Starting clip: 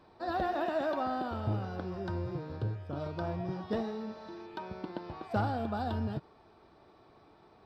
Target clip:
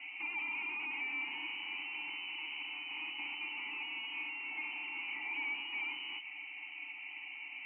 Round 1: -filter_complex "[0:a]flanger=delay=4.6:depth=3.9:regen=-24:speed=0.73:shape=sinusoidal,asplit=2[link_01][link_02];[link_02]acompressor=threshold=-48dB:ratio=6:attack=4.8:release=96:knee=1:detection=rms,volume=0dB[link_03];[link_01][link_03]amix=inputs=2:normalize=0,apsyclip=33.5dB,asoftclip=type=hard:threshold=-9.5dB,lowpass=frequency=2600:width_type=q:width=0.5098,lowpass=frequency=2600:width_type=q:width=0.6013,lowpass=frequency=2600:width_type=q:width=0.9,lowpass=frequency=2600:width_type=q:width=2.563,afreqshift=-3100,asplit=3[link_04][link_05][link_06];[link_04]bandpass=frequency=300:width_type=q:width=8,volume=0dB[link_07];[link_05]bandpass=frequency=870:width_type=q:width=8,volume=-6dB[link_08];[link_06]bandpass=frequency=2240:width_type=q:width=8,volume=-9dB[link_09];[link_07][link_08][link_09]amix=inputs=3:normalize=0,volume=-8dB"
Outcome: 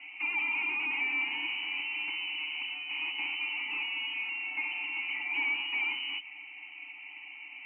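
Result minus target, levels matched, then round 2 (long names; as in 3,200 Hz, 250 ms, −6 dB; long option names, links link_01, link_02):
hard clipping: distortion −4 dB
-filter_complex "[0:a]flanger=delay=4.6:depth=3.9:regen=-24:speed=0.73:shape=sinusoidal,asplit=2[link_01][link_02];[link_02]acompressor=threshold=-48dB:ratio=6:attack=4.8:release=96:knee=1:detection=rms,volume=0dB[link_03];[link_01][link_03]amix=inputs=2:normalize=0,apsyclip=33.5dB,asoftclip=type=hard:threshold=-17.5dB,lowpass=frequency=2600:width_type=q:width=0.5098,lowpass=frequency=2600:width_type=q:width=0.6013,lowpass=frequency=2600:width_type=q:width=0.9,lowpass=frequency=2600:width_type=q:width=2.563,afreqshift=-3100,asplit=3[link_04][link_05][link_06];[link_04]bandpass=frequency=300:width_type=q:width=8,volume=0dB[link_07];[link_05]bandpass=frequency=870:width_type=q:width=8,volume=-6dB[link_08];[link_06]bandpass=frequency=2240:width_type=q:width=8,volume=-9dB[link_09];[link_07][link_08][link_09]amix=inputs=3:normalize=0,volume=-8dB"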